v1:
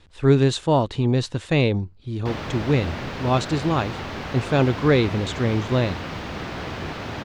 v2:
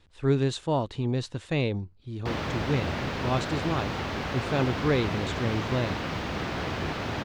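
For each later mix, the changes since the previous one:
speech -7.5 dB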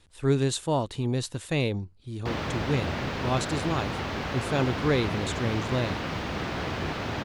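speech: remove distance through air 100 m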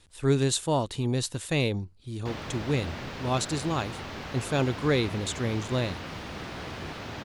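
background -7.0 dB; master: add treble shelf 4.1 kHz +5.5 dB

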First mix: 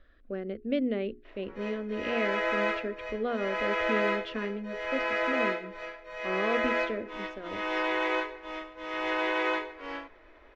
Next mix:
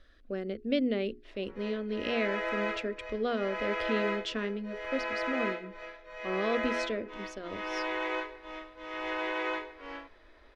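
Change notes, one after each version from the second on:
speech: remove low-pass 2.5 kHz 12 dB/octave; background -4.5 dB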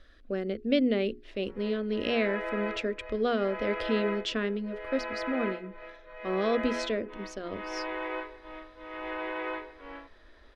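speech +3.5 dB; background: add distance through air 310 m

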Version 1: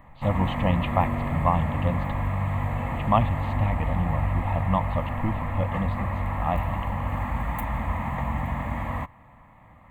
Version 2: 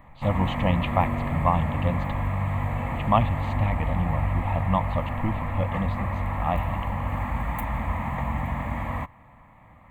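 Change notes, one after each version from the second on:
speech: remove distance through air 98 m; master: remove band-stop 2.3 kHz, Q 23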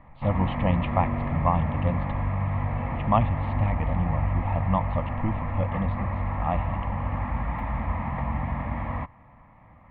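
master: add distance through air 330 m

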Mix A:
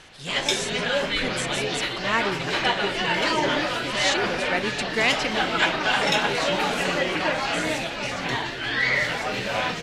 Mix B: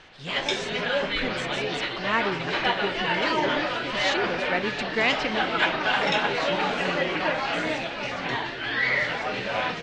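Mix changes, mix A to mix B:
background: add bass shelf 190 Hz -6 dB; master: add distance through air 140 m

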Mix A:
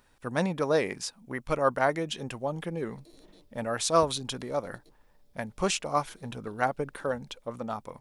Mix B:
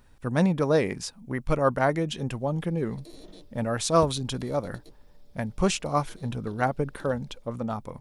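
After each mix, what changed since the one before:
speech: add bass shelf 250 Hz +12 dB; background +8.5 dB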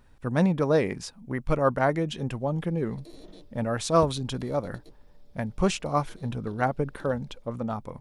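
master: add treble shelf 4.2 kHz -5.5 dB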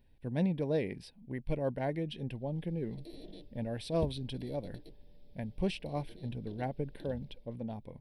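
speech -7.5 dB; master: add static phaser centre 3 kHz, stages 4

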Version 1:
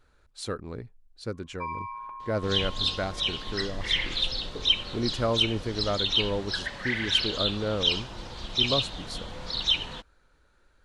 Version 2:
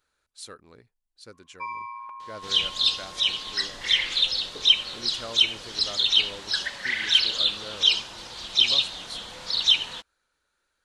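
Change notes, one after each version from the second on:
speech -9.5 dB; master: add tilt EQ +3 dB/octave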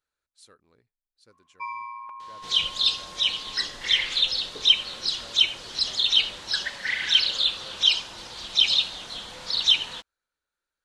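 speech -12.0 dB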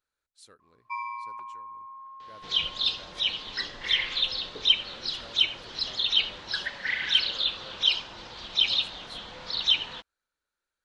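first sound: entry -0.70 s; second sound: add distance through air 160 m

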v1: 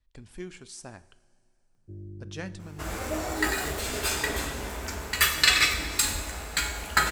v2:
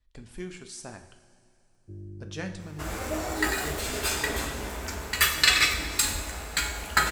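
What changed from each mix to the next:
speech: send +9.5 dB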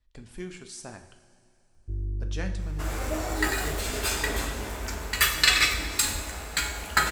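first sound: remove high-pass 110 Hz 24 dB/octave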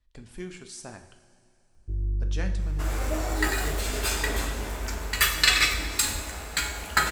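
first sound: send +10.5 dB

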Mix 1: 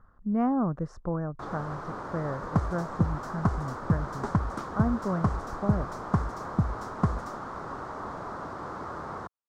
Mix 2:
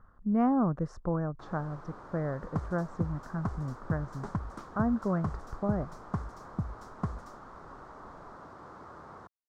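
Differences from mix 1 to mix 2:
first sound -11.0 dB; second sound -8.0 dB

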